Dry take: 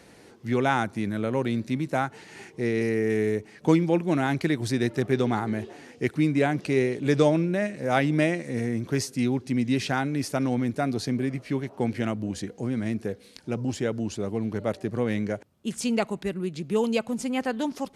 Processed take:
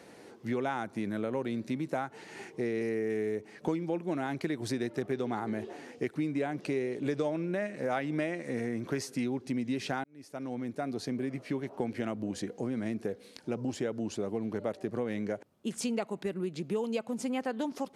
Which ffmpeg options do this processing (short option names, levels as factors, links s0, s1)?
-filter_complex "[0:a]asettb=1/sr,asplit=3[s0][s1][s2];[s0]atrim=end=7.244[s3];[s1]atrim=start=7.24:end=9.24,asetpts=PTS-STARTPTS,afade=t=in:d=0.004:c=qsin,afade=t=out:st=1.996:d=0.004:c=qsin,equalizer=f=1600:t=o:w=1.9:g=3.5[s4];[s2]atrim=start=9.236[s5];[s3][s4]acrossfade=d=0.004:c1=hsin:c2=qsin[s6];[s6][s5]acrossfade=d=0.004:c1=qsin:c2=hsin,asplit=2[s7][s8];[s7]atrim=end=10.04,asetpts=PTS-STARTPTS,afade=t=out:st=10.036:d=0.004:c=hsin[s9];[s8]atrim=start=10.04,asetpts=PTS-STARTPTS,afade=t=in:d=1.59[s10];[s9][s10]concat=n=2:v=0:a=1,highpass=f=430:p=1,tiltshelf=f=970:g=4.5,acompressor=threshold=0.0282:ratio=4,volume=1.12"